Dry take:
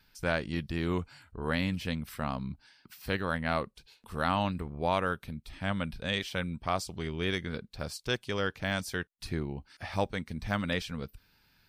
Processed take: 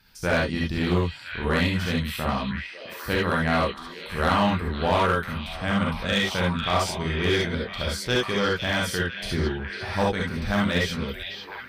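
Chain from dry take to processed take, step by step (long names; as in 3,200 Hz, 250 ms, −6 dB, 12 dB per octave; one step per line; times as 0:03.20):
echo through a band-pass that steps 500 ms, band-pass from 3,400 Hz, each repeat −0.7 octaves, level −5 dB
reverb whose tail is shaped and stops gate 90 ms rising, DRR −2.5 dB
asymmetric clip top −22 dBFS
level +4 dB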